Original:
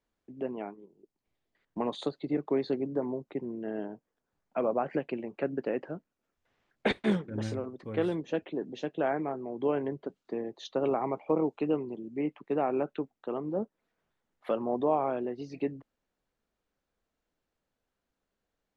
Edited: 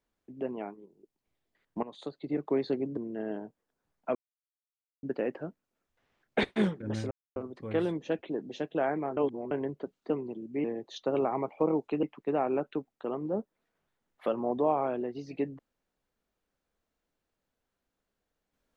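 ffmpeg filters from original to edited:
ffmpeg -i in.wav -filter_complex "[0:a]asplit=11[link_01][link_02][link_03][link_04][link_05][link_06][link_07][link_08][link_09][link_10][link_11];[link_01]atrim=end=1.83,asetpts=PTS-STARTPTS,afade=type=out:start_time=1.826:duration=0.004:curve=hsin:silence=0.141254[link_12];[link_02]atrim=start=1.83:end=2.972,asetpts=PTS-STARTPTS,afade=type=in:duration=0.64:silence=0.141254[link_13];[link_03]atrim=start=3.448:end=4.63,asetpts=PTS-STARTPTS,afade=type=out:start_time=1.178:duration=0.004:curve=hsin[link_14];[link_04]atrim=start=4.63:end=5.51,asetpts=PTS-STARTPTS,volume=0[link_15];[link_05]atrim=start=5.51:end=7.59,asetpts=PTS-STARTPTS,afade=type=in:duration=0.004:curve=hsin,afade=type=out:start_time=2.076:duration=0.004:curve=hsin,apad=pad_dur=0.25[link_16];[link_06]atrim=start=7.59:end=9.402,asetpts=PTS-STARTPTS,afade=type=in:duration=0.004:curve=hsin[link_17];[link_07]atrim=start=9.398:end=9.742,asetpts=PTS-STARTPTS,areverse[link_18];[link_08]atrim=start=9.738:end=10.332[link_19];[link_09]atrim=start=11.718:end=12.262[link_20];[link_10]atrim=start=10.328:end=11.722[link_21];[link_11]atrim=start=12.258[link_22];[link_12][link_13]concat=n=2:v=0:a=1[link_23];[link_14][link_15][link_16][link_17]concat=n=4:v=0:a=1[link_24];[link_23][link_24]acrossfade=duration=0.004:curve1=hsin:curve2=hsin[link_25];[link_25][link_18]acrossfade=duration=0.004:curve1=hsin:curve2=hsin[link_26];[link_26][link_19]acrossfade=duration=0.004:curve1=hsin:curve2=hsin[link_27];[link_27][link_20]acrossfade=duration=0.004:curve1=hsin:curve2=hsin[link_28];[link_28][link_21]acrossfade=duration=0.004:curve1=hsin:curve2=hsin[link_29];[link_29][link_22]acrossfade=duration=0.004:curve1=hsin:curve2=hsin" out.wav

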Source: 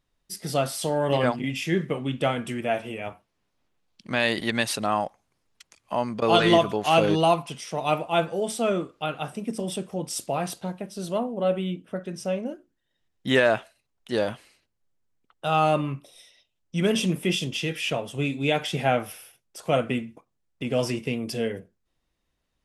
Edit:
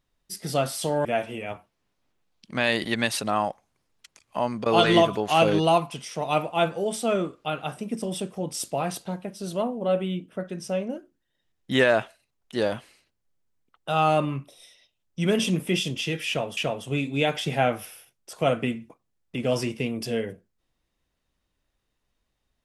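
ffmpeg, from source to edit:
ffmpeg -i in.wav -filter_complex "[0:a]asplit=3[link_01][link_02][link_03];[link_01]atrim=end=1.052[link_04];[link_02]atrim=start=2.608:end=18.132[link_05];[link_03]atrim=start=17.838[link_06];[link_04][link_05]acrossfade=duration=0.004:curve1=hsin:curve2=hsin[link_07];[link_07][link_06]acrossfade=duration=0.004:curve1=hsin:curve2=hsin" out.wav

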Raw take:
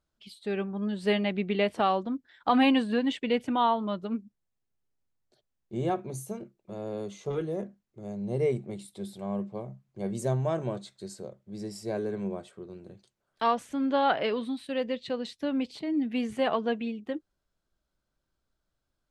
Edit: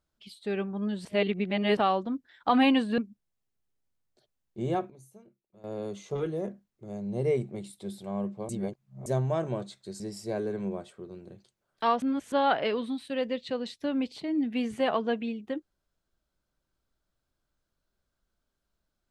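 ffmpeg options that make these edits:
ffmpeg -i in.wav -filter_complex "[0:a]asplit=11[link_01][link_02][link_03][link_04][link_05][link_06][link_07][link_08][link_09][link_10][link_11];[link_01]atrim=end=1.052[link_12];[link_02]atrim=start=1.048:end=1.772,asetpts=PTS-STARTPTS,areverse[link_13];[link_03]atrim=start=1.768:end=2.982[link_14];[link_04]atrim=start=4.128:end=6.05,asetpts=PTS-STARTPTS,afade=type=out:start_time=1.612:duration=0.31:curve=log:silence=0.149624[link_15];[link_05]atrim=start=6.05:end=6.79,asetpts=PTS-STARTPTS,volume=-16.5dB[link_16];[link_06]atrim=start=6.79:end=9.642,asetpts=PTS-STARTPTS,afade=type=in:duration=0.31:curve=log:silence=0.149624[link_17];[link_07]atrim=start=9.638:end=10.212,asetpts=PTS-STARTPTS,areverse[link_18];[link_08]atrim=start=10.208:end=11.152[link_19];[link_09]atrim=start=11.588:end=13.612[link_20];[link_10]atrim=start=13.608:end=13.912,asetpts=PTS-STARTPTS,areverse[link_21];[link_11]atrim=start=13.908[link_22];[link_12][link_13]acrossfade=duration=0.004:curve1=hsin:curve2=hsin[link_23];[link_23][link_14]acrossfade=duration=0.004:curve1=hsin:curve2=hsin[link_24];[link_15][link_16][link_17]concat=n=3:v=0:a=1[link_25];[link_24][link_25]acrossfade=duration=0.004:curve1=hsin:curve2=hsin[link_26];[link_26][link_18]acrossfade=duration=0.004:curve1=hsin:curve2=hsin[link_27];[link_27][link_19]acrossfade=duration=0.004:curve1=hsin:curve2=hsin[link_28];[link_28][link_20]acrossfade=duration=0.004:curve1=hsin:curve2=hsin[link_29];[link_29][link_21]acrossfade=duration=0.004:curve1=hsin:curve2=hsin[link_30];[link_30][link_22]acrossfade=duration=0.004:curve1=hsin:curve2=hsin" out.wav

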